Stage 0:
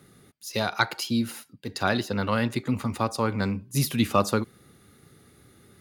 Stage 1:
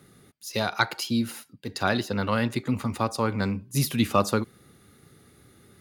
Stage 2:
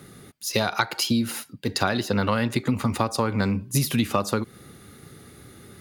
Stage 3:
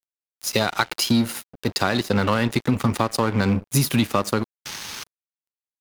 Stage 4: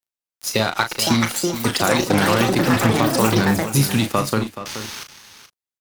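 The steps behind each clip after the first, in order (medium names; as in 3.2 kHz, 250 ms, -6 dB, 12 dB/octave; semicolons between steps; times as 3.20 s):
no audible change
compression 12:1, threshold -27 dBFS, peak gain reduction 12.5 dB; trim +8.5 dB
painted sound noise, 4.65–5.04 s, 810–6700 Hz -34 dBFS; in parallel at +0.5 dB: peak limiter -16.5 dBFS, peak gain reduction 11.5 dB; on the sum: crossover distortion -29 dBFS
ever faster or slower copies 698 ms, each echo +7 st, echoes 3; doubling 36 ms -8 dB; delay 427 ms -12 dB; trim +1 dB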